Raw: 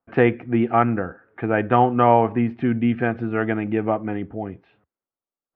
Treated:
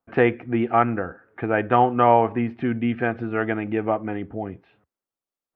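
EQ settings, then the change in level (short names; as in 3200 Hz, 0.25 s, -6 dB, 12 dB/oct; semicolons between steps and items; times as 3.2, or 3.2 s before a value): dynamic EQ 160 Hz, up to -5 dB, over -30 dBFS, Q 0.81; 0.0 dB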